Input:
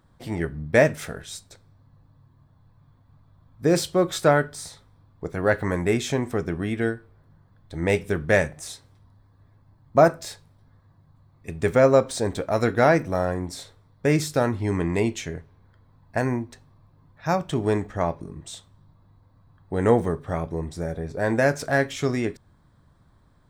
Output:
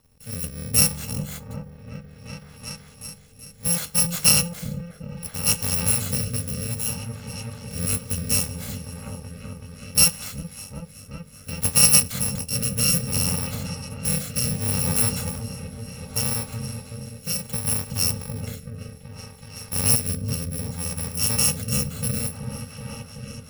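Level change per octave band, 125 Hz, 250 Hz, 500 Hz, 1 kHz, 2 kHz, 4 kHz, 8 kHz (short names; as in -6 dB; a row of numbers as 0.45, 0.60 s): +1.0, -4.5, -15.0, -11.0, -6.0, +11.0, +17.0 dB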